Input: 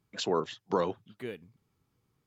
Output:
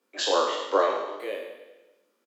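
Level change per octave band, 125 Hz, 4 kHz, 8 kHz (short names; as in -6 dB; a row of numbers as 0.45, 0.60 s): under -25 dB, +9.5 dB, n/a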